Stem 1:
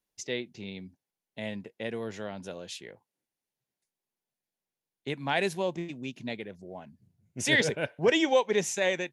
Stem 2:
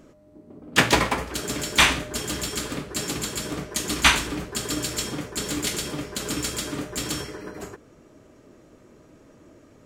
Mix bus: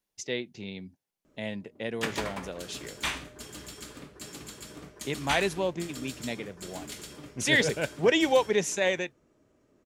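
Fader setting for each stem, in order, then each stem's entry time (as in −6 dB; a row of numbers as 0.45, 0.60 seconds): +1.0, −14.5 decibels; 0.00, 1.25 seconds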